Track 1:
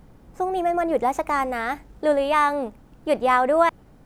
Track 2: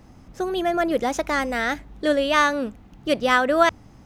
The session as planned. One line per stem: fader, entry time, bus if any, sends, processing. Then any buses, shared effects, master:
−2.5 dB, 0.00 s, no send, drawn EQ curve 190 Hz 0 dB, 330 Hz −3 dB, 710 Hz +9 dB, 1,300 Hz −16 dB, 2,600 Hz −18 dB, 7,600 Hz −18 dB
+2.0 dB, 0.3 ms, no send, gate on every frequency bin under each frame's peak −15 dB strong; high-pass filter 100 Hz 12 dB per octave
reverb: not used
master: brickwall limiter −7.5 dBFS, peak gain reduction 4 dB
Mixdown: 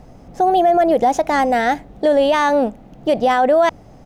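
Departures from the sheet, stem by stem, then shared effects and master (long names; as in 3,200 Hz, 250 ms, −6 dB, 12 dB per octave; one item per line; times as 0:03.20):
stem 1 −2.5 dB → +6.0 dB
stem 2: missing gate on every frequency bin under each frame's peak −15 dB strong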